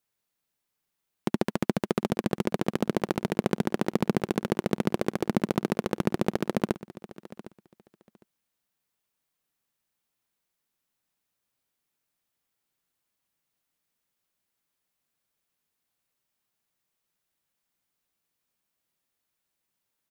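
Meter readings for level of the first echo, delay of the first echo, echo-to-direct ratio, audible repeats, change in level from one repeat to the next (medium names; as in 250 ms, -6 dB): -17.5 dB, 757 ms, -17.5 dB, 2, -15.5 dB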